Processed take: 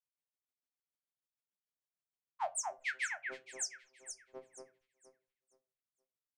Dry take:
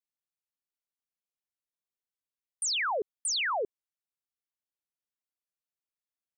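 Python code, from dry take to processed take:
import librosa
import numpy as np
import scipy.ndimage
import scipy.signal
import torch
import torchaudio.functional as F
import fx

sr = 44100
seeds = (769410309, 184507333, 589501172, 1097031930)

y = scipy.signal.sosfilt(scipy.signal.butter(2, 100.0, 'highpass', fs=sr, output='sos'), x)
y = fx.low_shelf(y, sr, hz=330.0, db=9.0)
y = fx.hum_notches(y, sr, base_hz=60, count=5)
y = fx.comb_fb(y, sr, f0_hz=130.0, decay_s=0.46, harmonics='all', damping=0.0, mix_pct=70)
y = fx.cheby_harmonics(y, sr, harmonics=(2, 4, 6), levels_db=(-31, -29, -30), full_scale_db=-29.0)
y = fx.granulator(y, sr, seeds[0], grain_ms=100.0, per_s=6.7, spray_ms=863.0, spread_st=0)
y = fx.echo_alternate(y, sr, ms=235, hz=2400.0, feedback_pct=52, wet_db=-4.0)
y = fx.room_shoebox(y, sr, seeds[1], volume_m3=120.0, walls='furnished', distance_m=0.4)
y = y * librosa.db_to_amplitude(4.0)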